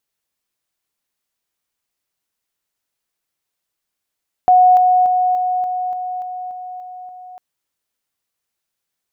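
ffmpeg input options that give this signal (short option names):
-f lavfi -i "aevalsrc='pow(10,(-6.5-3*floor(t/0.29))/20)*sin(2*PI*732*t)':d=2.9:s=44100"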